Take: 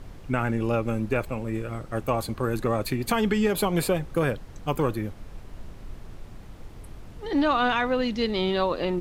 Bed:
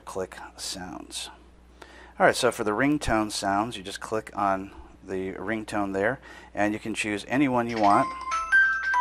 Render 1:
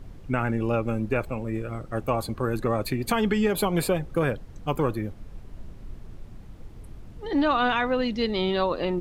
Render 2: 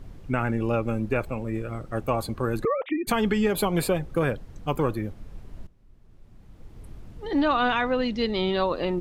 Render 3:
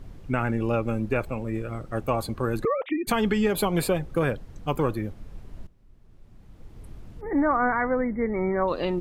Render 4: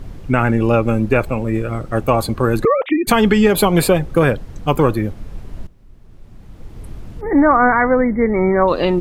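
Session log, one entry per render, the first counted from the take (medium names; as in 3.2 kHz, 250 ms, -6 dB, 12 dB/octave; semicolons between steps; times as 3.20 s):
noise reduction 6 dB, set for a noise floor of -44 dBFS
2.65–3.07 s: formants replaced by sine waves; 5.67–6.87 s: fade in quadratic, from -17.5 dB; 7.40–8.64 s: low-pass 9 kHz
7.21–8.68 s: brick-wall FIR band-stop 2.3–10 kHz
trim +10.5 dB; peak limiter -1 dBFS, peak gain reduction 1 dB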